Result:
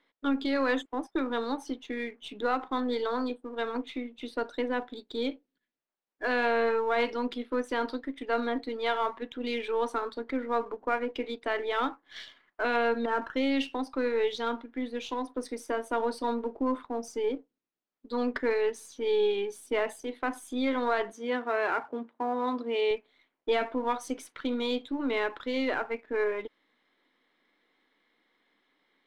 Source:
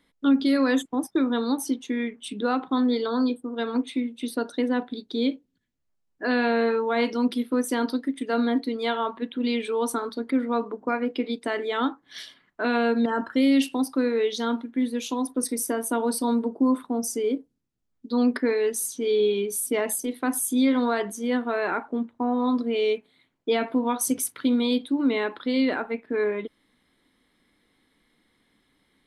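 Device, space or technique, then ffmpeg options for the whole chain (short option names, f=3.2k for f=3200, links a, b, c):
crystal radio: -filter_complex "[0:a]highpass=400,lowpass=3.4k,aeval=exprs='if(lt(val(0),0),0.708*val(0),val(0))':c=same,asettb=1/sr,asplit=3[a][b][c];[a]atrim=end=21.124[d];[b]atrim=start=21.12:end=22.91,asetpts=PTS-STARTPTS,afade=t=in:d=0.004:c=qsin,afade=t=out:st=1.786:d=0.004:c=qsin,highpass=110[e];[c]atrim=start=22.906[f];[d][e]acrossfade=d=0.004:c1=hsin:c2=qsin[g];[g][f]acrossfade=d=0.004:c1=qsin:c2=hsin"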